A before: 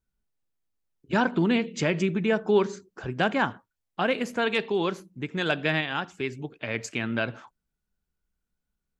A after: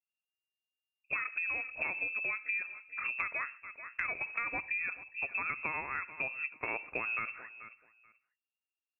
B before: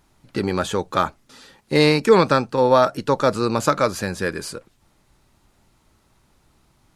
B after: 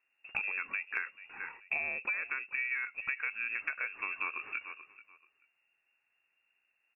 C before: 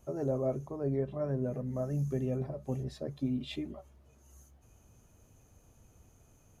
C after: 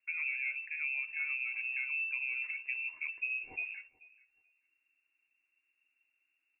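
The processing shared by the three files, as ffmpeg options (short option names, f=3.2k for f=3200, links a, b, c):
-af "agate=range=-18dB:threshold=-52dB:ratio=16:detection=peak,aecho=1:1:434|868:0.075|0.0135,lowpass=f=2.4k:t=q:w=0.5098,lowpass=f=2.4k:t=q:w=0.6013,lowpass=f=2.4k:t=q:w=0.9,lowpass=f=2.4k:t=q:w=2.563,afreqshift=-2800,acompressor=threshold=-32dB:ratio=16"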